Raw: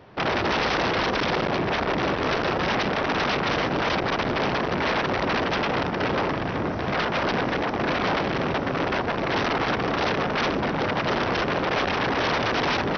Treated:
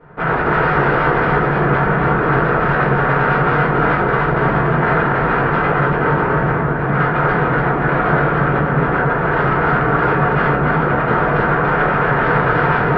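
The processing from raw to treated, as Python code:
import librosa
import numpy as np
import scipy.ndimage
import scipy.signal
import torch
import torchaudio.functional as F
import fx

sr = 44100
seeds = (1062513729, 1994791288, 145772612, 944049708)

y = fx.lowpass_res(x, sr, hz=1500.0, q=2.6)
y = fx.peak_eq(y, sr, hz=140.0, db=12.5, octaves=0.25)
y = y + 10.0 ** (-4.0 / 20.0) * np.pad(y, (int(286 * sr / 1000.0), 0))[:len(y)]
y = fx.room_shoebox(y, sr, seeds[0], volume_m3=36.0, walls='mixed', distance_m=1.6)
y = y * 10.0 ** (-6.5 / 20.0)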